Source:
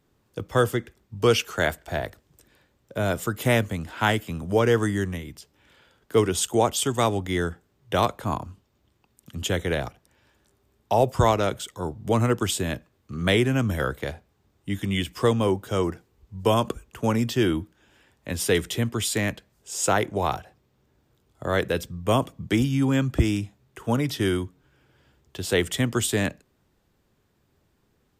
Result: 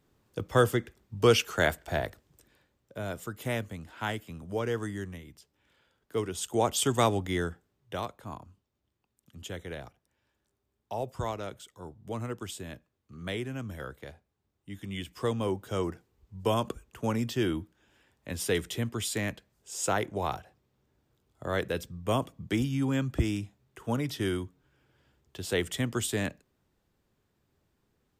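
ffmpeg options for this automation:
ffmpeg -i in.wav -af "volume=15dB,afade=type=out:start_time=2:duration=1.03:silence=0.354813,afade=type=in:start_time=6.38:duration=0.53:silence=0.334965,afade=type=out:start_time=6.91:duration=1.14:silence=0.237137,afade=type=in:start_time=14.7:duration=1.01:silence=0.421697" out.wav

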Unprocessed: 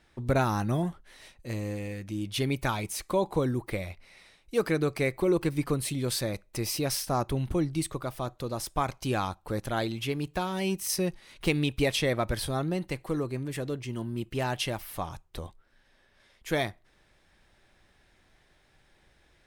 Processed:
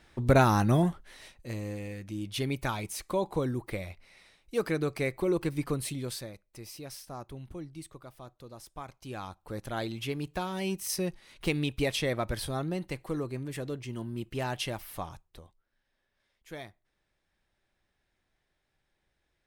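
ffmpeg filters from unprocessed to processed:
ffmpeg -i in.wav -af "volume=15dB,afade=type=out:start_time=0.84:duration=0.7:silence=0.446684,afade=type=out:start_time=5.86:duration=0.48:silence=0.281838,afade=type=in:start_time=8.99:duration=1.01:silence=0.281838,afade=type=out:start_time=14.98:duration=0.47:silence=0.266073" out.wav

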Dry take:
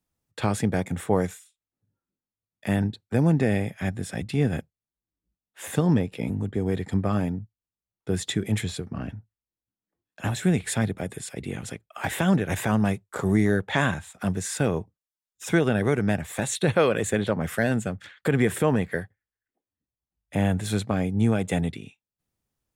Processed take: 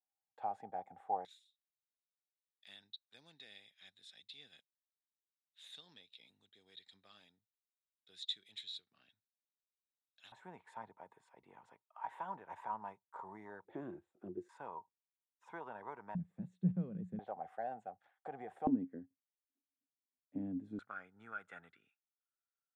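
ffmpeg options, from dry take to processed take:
ffmpeg -i in.wav -af "asetnsamples=nb_out_samples=441:pad=0,asendcmd='1.25 bandpass f 3800;10.32 bandpass f 940;13.65 bandpass f 350;14.49 bandpass f 950;16.15 bandpass f 180;17.19 bandpass f 760;18.67 bandpass f 270;20.79 bandpass f 1400',bandpass=frequency=780:width_type=q:width=15:csg=0" out.wav

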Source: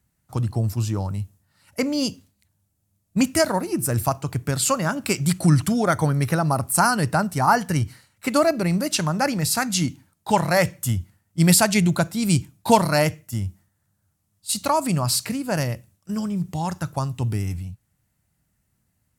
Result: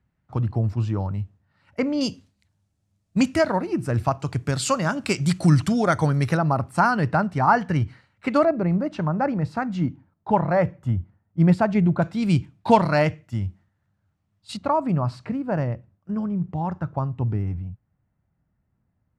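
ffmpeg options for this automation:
ffmpeg -i in.wav -af "asetnsamples=nb_out_samples=441:pad=0,asendcmd='2.01 lowpass f 5500;3.36 lowpass f 3000;4.2 lowpass f 5900;6.37 lowpass f 2600;8.45 lowpass f 1200;12.02 lowpass f 2900;14.57 lowpass f 1300',lowpass=2400" out.wav

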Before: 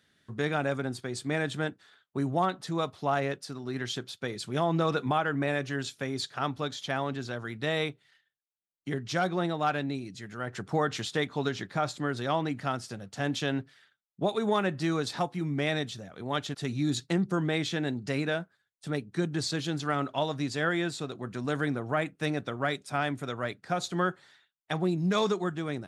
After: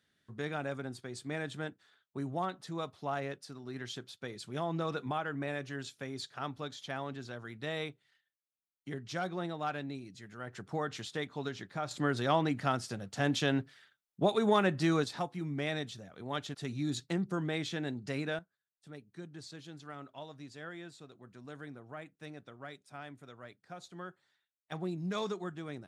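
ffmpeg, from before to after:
ffmpeg -i in.wav -af "asetnsamples=nb_out_samples=441:pad=0,asendcmd='11.91 volume volume 0dB;15.04 volume volume -6dB;18.39 volume volume -17dB;24.72 volume volume -9dB',volume=-8dB" out.wav

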